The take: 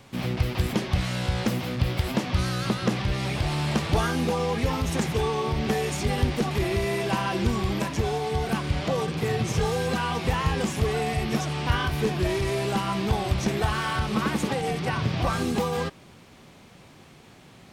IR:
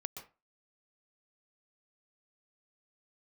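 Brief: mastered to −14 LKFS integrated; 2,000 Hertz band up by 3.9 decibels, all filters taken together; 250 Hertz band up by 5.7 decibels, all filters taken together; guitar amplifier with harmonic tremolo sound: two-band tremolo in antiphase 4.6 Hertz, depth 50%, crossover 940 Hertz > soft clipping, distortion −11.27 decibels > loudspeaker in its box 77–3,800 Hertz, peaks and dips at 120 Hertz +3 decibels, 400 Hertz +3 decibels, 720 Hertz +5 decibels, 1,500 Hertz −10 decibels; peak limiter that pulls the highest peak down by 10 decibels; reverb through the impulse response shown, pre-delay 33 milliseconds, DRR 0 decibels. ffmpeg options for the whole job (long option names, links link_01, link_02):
-filter_complex "[0:a]equalizer=frequency=250:width_type=o:gain=7,equalizer=frequency=2000:width_type=o:gain=8.5,alimiter=limit=-17dB:level=0:latency=1,asplit=2[link_01][link_02];[1:a]atrim=start_sample=2205,adelay=33[link_03];[link_02][link_03]afir=irnorm=-1:irlink=0,volume=2dB[link_04];[link_01][link_04]amix=inputs=2:normalize=0,acrossover=split=940[link_05][link_06];[link_05]aeval=exprs='val(0)*(1-0.5/2+0.5/2*cos(2*PI*4.6*n/s))':channel_layout=same[link_07];[link_06]aeval=exprs='val(0)*(1-0.5/2-0.5/2*cos(2*PI*4.6*n/s))':channel_layout=same[link_08];[link_07][link_08]amix=inputs=2:normalize=0,asoftclip=threshold=-24.5dB,highpass=77,equalizer=frequency=120:width_type=q:width=4:gain=3,equalizer=frequency=400:width_type=q:width=4:gain=3,equalizer=frequency=720:width_type=q:width=4:gain=5,equalizer=frequency=1500:width_type=q:width=4:gain=-10,lowpass=frequency=3800:width=0.5412,lowpass=frequency=3800:width=1.3066,volume=14.5dB"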